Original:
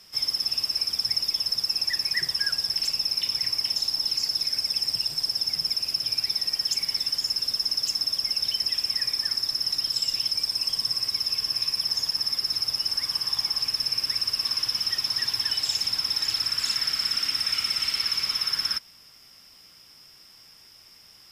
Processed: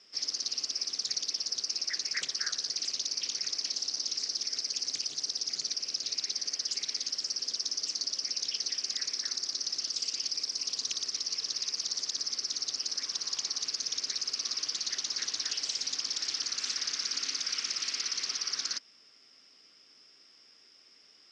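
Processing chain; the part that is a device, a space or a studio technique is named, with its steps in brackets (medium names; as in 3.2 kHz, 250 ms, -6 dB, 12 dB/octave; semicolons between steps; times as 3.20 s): full-range speaker at full volume (loudspeaker Doppler distortion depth 0.89 ms; cabinet simulation 260–6900 Hz, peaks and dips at 270 Hz +6 dB, 420 Hz +5 dB, 910 Hz -7 dB); trim -6.5 dB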